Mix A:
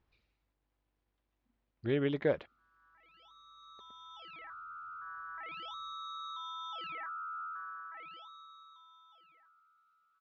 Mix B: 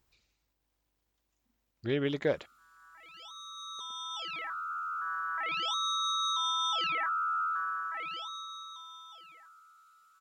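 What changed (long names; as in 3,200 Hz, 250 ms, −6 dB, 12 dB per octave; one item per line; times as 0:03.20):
background +8.5 dB
master: remove high-frequency loss of the air 280 metres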